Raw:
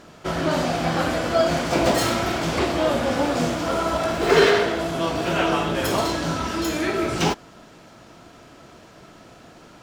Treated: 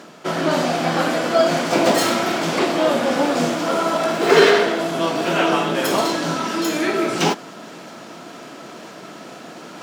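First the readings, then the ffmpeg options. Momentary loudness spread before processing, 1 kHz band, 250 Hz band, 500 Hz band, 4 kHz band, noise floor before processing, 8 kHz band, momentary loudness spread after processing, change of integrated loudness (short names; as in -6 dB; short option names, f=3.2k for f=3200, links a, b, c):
6 LU, +3.5 dB, +3.0 dB, +3.5 dB, +3.5 dB, -48 dBFS, +3.5 dB, 21 LU, +3.0 dB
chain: -af "highpass=f=170:w=0.5412,highpass=f=170:w=1.3066,areverse,acompressor=mode=upward:threshold=-32dB:ratio=2.5,areverse,volume=3.5dB"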